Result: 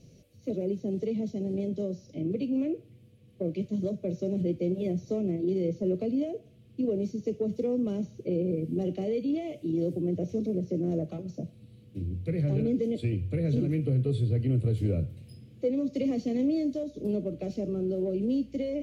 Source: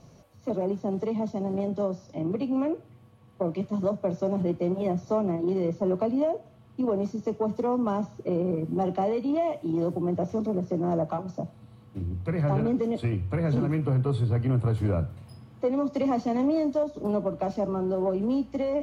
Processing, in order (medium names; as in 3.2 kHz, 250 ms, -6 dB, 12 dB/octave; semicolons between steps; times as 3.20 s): FFT filter 500 Hz 0 dB, 950 Hz -27 dB, 2.5 kHz 0 dB; trim -1.5 dB